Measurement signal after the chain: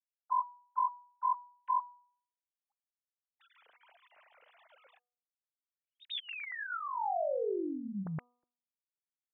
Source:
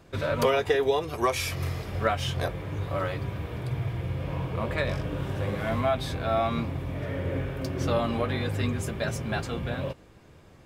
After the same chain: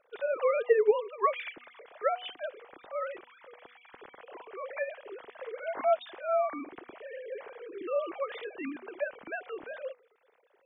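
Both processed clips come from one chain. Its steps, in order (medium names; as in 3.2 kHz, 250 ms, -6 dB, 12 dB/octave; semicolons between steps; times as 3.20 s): formants replaced by sine waves; de-hum 244.2 Hz, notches 5; trim -5 dB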